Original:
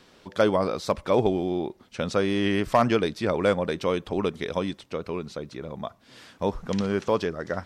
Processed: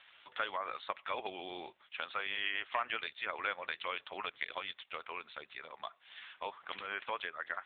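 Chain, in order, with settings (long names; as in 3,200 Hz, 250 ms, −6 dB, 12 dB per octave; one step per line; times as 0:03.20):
high-pass filter 1,500 Hz 12 dB per octave
downward compressor 2 to 1, threshold −41 dBFS, peak gain reduction 9.5 dB
level +5 dB
AMR narrowband 6.7 kbit/s 8,000 Hz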